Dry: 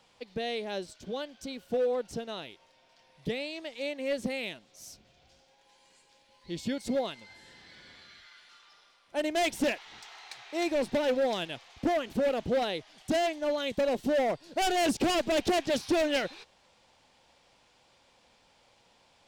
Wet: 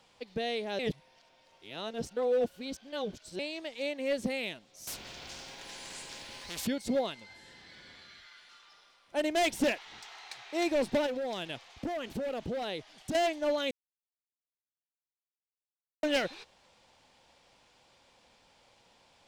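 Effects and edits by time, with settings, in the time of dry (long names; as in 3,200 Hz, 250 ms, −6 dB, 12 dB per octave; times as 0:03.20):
0:00.79–0:03.39: reverse
0:04.87–0:06.67: every bin compressed towards the loudest bin 4 to 1
0:11.06–0:13.15: downward compressor 5 to 1, threshold −32 dBFS
0:13.71–0:16.03: silence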